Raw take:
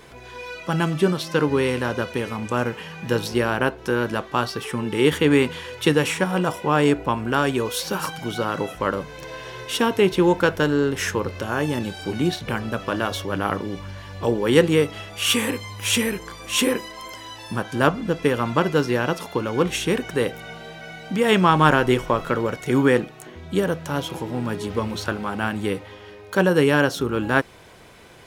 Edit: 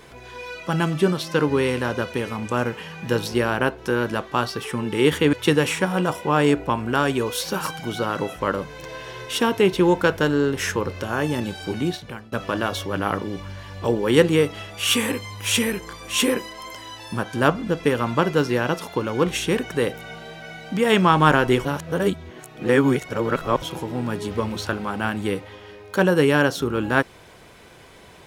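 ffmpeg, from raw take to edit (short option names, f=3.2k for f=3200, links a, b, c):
-filter_complex "[0:a]asplit=5[a][b][c][d][e];[a]atrim=end=5.332[f];[b]atrim=start=5.718:end=12.71,asetpts=PTS-STARTPTS,afade=t=out:st=6.382:d=0.61:silence=0.0668344[g];[c]atrim=start=12.71:end=22.042,asetpts=PTS-STARTPTS,afade=t=in:d=0.004:c=hsin:silence=0.0668344[h];[d]atrim=start=22.038:end=24.012,asetpts=PTS-STARTPTS,areverse[i];[e]atrim=start=24.008[j];[g][h]concat=n=2:v=0:a=1[k];[f][k]acrossfade=d=0.004:c1=hsin:c2=hsin[l];[l][i]acrossfade=d=0.004:c1=hsin:c2=hsin[m];[m][j]acrossfade=d=0.004:c1=hsin:c2=hsin"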